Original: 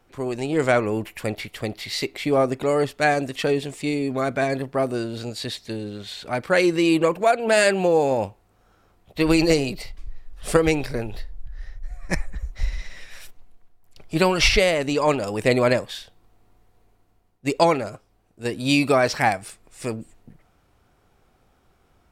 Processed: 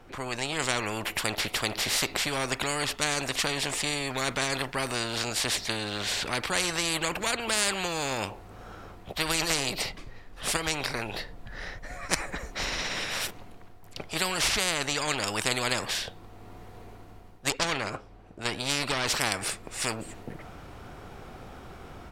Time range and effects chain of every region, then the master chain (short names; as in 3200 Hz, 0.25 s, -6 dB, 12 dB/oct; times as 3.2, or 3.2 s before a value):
17.5–19.08 LPF 3700 Hz 6 dB/oct + tube stage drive 13 dB, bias 0.6
whole clip: high shelf 6000 Hz -8.5 dB; AGC gain up to 9 dB; spectral compressor 4:1; gain -6 dB